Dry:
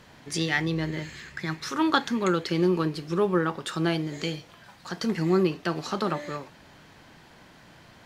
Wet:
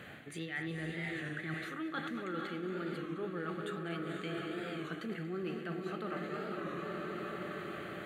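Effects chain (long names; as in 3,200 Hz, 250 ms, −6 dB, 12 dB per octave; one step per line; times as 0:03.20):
feedback delay that plays each chunk backwards 118 ms, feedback 80%, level −11.5 dB
in parallel at −8 dB: soft clipping −24 dBFS, distortion −9 dB
on the sum: high-pass filter 86 Hz
parametric band 970 Hz +12.5 dB 1.5 octaves
phaser with its sweep stopped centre 2,300 Hz, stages 4
feedback delay with all-pass diffusion 494 ms, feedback 50%, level −7 dB
reversed playback
downward compressor 8 to 1, threshold −36 dBFS, peak gain reduction 21 dB
reversed playback
wow of a warped record 33 1/3 rpm, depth 100 cents
level −1 dB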